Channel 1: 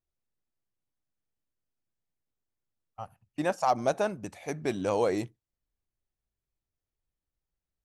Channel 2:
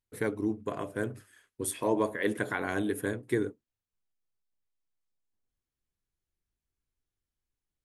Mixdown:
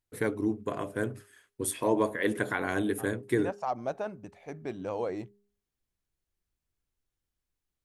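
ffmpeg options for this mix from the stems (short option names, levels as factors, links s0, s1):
-filter_complex "[0:a]aemphasis=mode=reproduction:type=75kf,volume=0.501[s0];[1:a]volume=1.19[s1];[s0][s1]amix=inputs=2:normalize=0,bandreject=f=203.3:t=h:w=4,bandreject=f=406.6:t=h:w=4"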